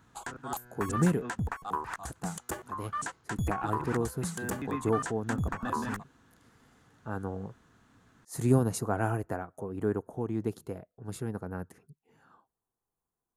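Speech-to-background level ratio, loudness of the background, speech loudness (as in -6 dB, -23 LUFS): 3.0 dB, -36.5 LUFS, -33.5 LUFS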